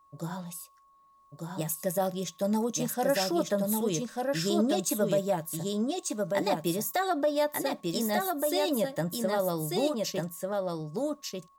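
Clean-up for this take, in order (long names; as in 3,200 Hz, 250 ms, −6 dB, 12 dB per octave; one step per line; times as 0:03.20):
notch filter 1,100 Hz, Q 30
echo removal 1,193 ms −3 dB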